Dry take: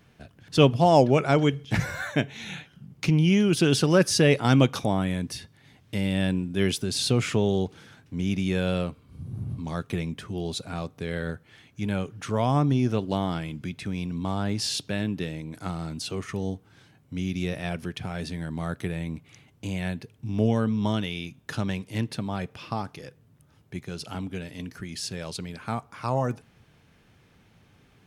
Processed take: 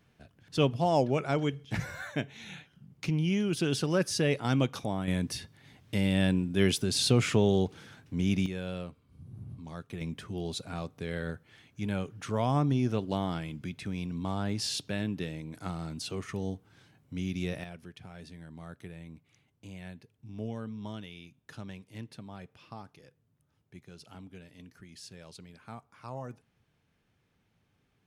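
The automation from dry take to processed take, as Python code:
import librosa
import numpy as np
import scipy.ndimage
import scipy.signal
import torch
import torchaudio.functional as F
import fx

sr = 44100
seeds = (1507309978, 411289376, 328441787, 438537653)

y = fx.gain(x, sr, db=fx.steps((0.0, -8.0), (5.08, -1.0), (8.46, -11.0), (10.01, -4.5), (17.64, -14.5)))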